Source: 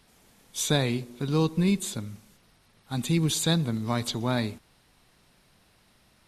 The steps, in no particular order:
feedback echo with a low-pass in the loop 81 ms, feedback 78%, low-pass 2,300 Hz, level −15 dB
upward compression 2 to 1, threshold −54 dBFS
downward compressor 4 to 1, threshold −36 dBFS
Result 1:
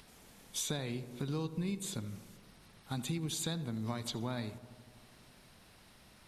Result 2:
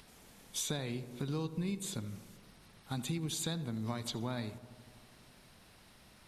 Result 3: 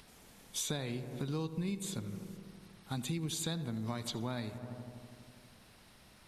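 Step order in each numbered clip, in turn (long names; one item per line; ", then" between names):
upward compression, then downward compressor, then feedback echo with a low-pass in the loop
downward compressor, then upward compression, then feedback echo with a low-pass in the loop
upward compression, then feedback echo with a low-pass in the loop, then downward compressor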